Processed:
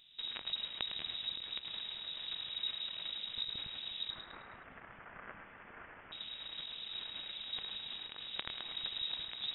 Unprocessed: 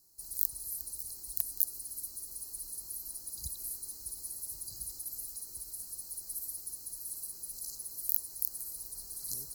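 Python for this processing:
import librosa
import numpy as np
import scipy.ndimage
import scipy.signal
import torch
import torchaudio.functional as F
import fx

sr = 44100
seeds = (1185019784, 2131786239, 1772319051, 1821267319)

p1 = fx.tracing_dist(x, sr, depth_ms=0.17)
p2 = fx.over_compress(p1, sr, threshold_db=-45.0, ratio=-0.5)
p3 = 10.0 ** (-26.5 / 20.0) * np.tanh(p2 / 10.0 ** (-26.5 / 20.0))
p4 = fx.highpass_res(p3, sr, hz=2300.0, q=2.4, at=(4.1, 6.12))
p5 = p4 + fx.echo_feedback(p4, sr, ms=106, feedback_pct=44, wet_db=-8.5, dry=0)
p6 = fx.freq_invert(p5, sr, carrier_hz=3800)
y = p6 * 10.0 ** (14.5 / 20.0)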